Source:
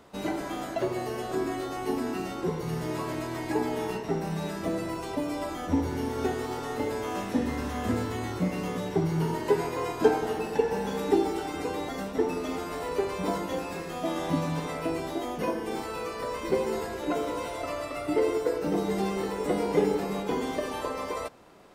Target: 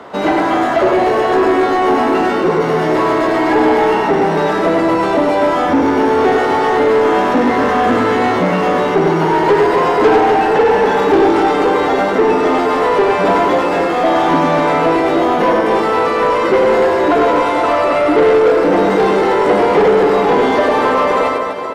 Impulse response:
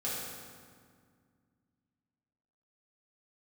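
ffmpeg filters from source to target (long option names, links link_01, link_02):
-filter_complex "[0:a]highshelf=frequency=3800:gain=-10,bandreject=frequency=2500:width=16,aecho=1:1:100|250|475|812.5|1319:0.631|0.398|0.251|0.158|0.1,asplit=2[link_01][link_02];[link_02]highpass=frequency=720:poles=1,volume=25dB,asoftclip=type=tanh:threshold=-8.5dB[link_03];[link_01][link_03]amix=inputs=2:normalize=0,lowpass=frequency=2000:poles=1,volume=-6dB,acrossover=split=160|930[link_04][link_05][link_06];[link_04]asoftclip=type=tanh:threshold=-38.5dB[link_07];[link_07][link_05][link_06]amix=inputs=3:normalize=0,volume=6.5dB"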